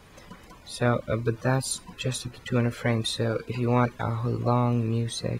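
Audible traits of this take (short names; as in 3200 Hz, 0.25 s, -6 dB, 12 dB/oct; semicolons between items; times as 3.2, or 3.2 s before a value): noise floor -51 dBFS; spectral tilt -5.5 dB/oct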